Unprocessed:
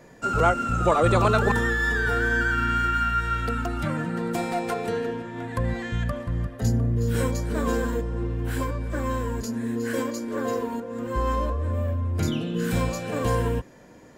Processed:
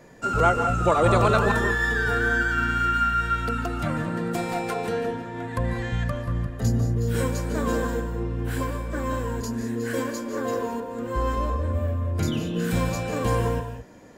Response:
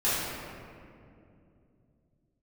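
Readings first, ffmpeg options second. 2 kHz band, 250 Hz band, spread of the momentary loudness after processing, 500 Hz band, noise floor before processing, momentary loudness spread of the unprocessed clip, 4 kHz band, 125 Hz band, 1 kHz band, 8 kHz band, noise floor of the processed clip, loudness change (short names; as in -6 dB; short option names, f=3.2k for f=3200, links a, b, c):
+0.5 dB, 0.0 dB, 9 LU, +0.5 dB, -49 dBFS, 8 LU, +0.5 dB, +0.5 dB, +1.0 dB, +0.5 dB, -35 dBFS, +0.5 dB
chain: -filter_complex "[0:a]asplit=2[a][b];[1:a]atrim=start_sample=2205,atrim=end_sample=3528,adelay=144[c];[b][c]afir=irnorm=-1:irlink=0,volume=-16.5dB[d];[a][d]amix=inputs=2:normalize=0"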